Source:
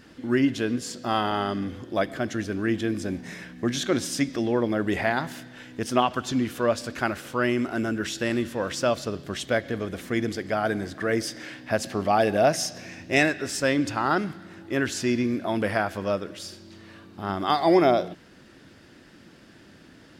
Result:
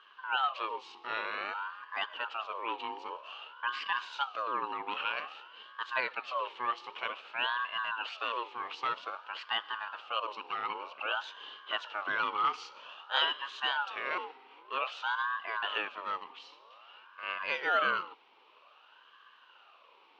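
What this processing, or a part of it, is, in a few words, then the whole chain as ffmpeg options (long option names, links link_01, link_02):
voice changer toy: -af "aeval=exprs='val(0)*sin(2*PI*980*n/s+980*0.4/0.52*sin(2*PI*0.52*n/s))':channel_layout=same,highpass=600,equalizer=frequency=730:width_type=q:width=4:gain=-6,equalizer=frequency=1200:width_type=q:width=4:gain=3,equalizer=frequency=2000:width_type=q:width=4:gain=-6,equalizer=frequency=2900:width_type=q:width=4:gain=9,lowpass=frequency=3700:width=0.5412,lowpass=frequency=3700:width=1.3066,volume=-5.5dB"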